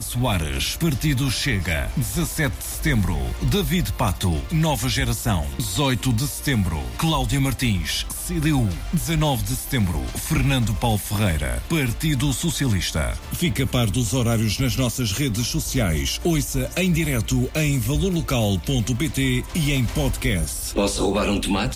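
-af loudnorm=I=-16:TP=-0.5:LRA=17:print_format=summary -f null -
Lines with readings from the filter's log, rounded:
Input Integrated:    -22.3 LUFS
Input True Peak:     -11.0 dBTP
Input LRA:             0.7 LU
Input Threshold:     -32.3 LUFS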